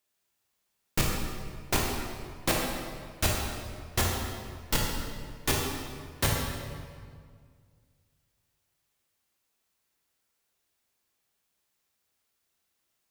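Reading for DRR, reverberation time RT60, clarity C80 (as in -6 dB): -2.5 dB, 2.0 s, 2.5 dB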